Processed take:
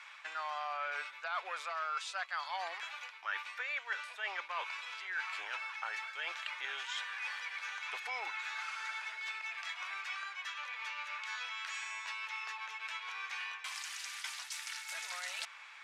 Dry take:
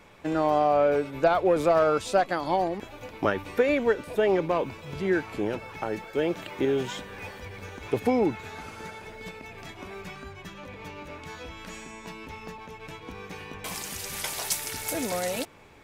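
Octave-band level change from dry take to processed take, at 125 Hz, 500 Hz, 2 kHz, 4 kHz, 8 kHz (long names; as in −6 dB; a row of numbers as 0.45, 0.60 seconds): below −40 dB, −28.5 dB, −1.5 dB, −2.5 dB, −11.0 dB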